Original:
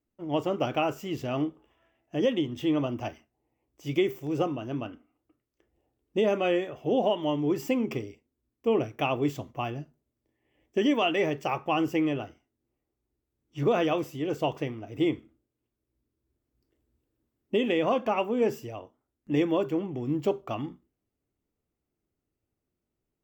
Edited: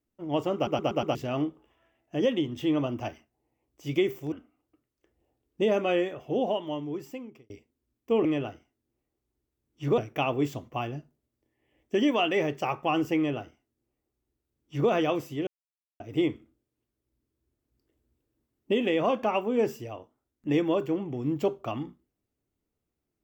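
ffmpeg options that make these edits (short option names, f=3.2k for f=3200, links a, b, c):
-filter_complex "[0:a]asplit=12[a][b][c][d][e][f][g][h][i][j][k][l];[a]atrim=end=0.672[m];[b]atrim=start=0.548:end=0.672[n];[c]atrim=start=0.548:end=0.672[o];[d]atrim=start=0.548:end=0.672[p];[e]atrim=start=0.548:end=0.672[q];[f]atrim=start=1.148:end=4.322[r];[g]atrim=start=4.878:end=8.06,asetpts=PTS-STARTPTS,afade=t=out:st=1.772:d=1.41[s];[h]atrim=start=8.06:end=8.812,asetpts=PTS-STARTPTS,afade=t=in:d=0.004:c=hsin[t];[i]atrim=start=11.998:end=13.732[u];[j]atrim=start=8.808:end=14.3,asetpts=PTS-STARTPTS,afade=t=out:st=5.488:d=0.004:c=hsin[v];[k]atrim=start=14.3:end=14.83,asetpts=PTS-STARTPTS,volume=0[w];[l]atrim=start=14.83,asetpts=PTS-STARTPTS,afade=t=in:d=0.004:c=hsin[x];[m][n]acrossfade=d=0.004:c1=hsin:c2=hsin[y];[y][o]acrossfade=d=0.004:c1=hsin:c2=hsin[z];[z][p]acrossfade=d=0.004:c1=hsin:c2=hsin[aa];[aa][q]acrossfade=d=0.004:c1=hsin:c2=hsin[ab];[ab][r]acrossfade=d=0.004:c1=hsin:c2=hsin[ac];[s][t]concat=n=2:v=0:a=1[ad];[ac][ad]acrossfade=d=0.004:c1=hsin:c2=hsin[ae];[ae][u]acrossfade=d=0.004:c1=hsin:c2=hsin[af];[v][w][x]concat=n=3:v=0:a=1[ag];[af][ag]acrossfade=d=0.004:c1=hsin:c2=hsin"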